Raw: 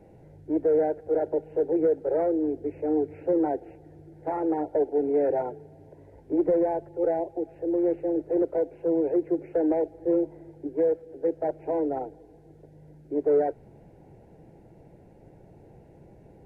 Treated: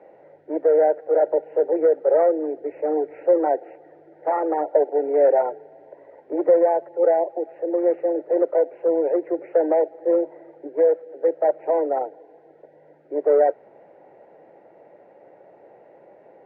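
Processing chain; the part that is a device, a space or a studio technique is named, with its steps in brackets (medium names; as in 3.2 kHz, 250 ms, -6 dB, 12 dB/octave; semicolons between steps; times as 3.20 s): tin-can telephone (band-pass 590–2000 Hz; small resonant body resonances 570/1200/1900 Hz, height 7 dB, ringing for 25 ms); trim +8.5 dB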